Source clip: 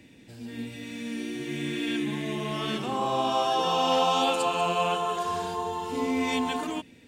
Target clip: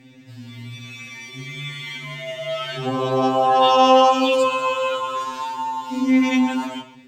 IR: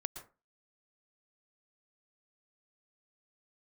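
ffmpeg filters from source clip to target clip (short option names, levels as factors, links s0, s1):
-filter_complex "[0:a]equalizer=f=10000:w=1.8:g=-13,asplit=2[s0][s1];[1:a]atrim=start_sample=2205,afade=t=out:st=0.34:d=0.01,atrim=end_sample=15435[s2];[s1][s2]afir=irnorm=-1:irlink=0,volume=1.58[s3];[s0][s3]amix=inputs=2:normalize=0,afftfilt=real='re*2.45*eq(mod(b,6),0)':imag='im*2.45*eq(mod(b,6),0)':win_size=2048:overlap=0.75"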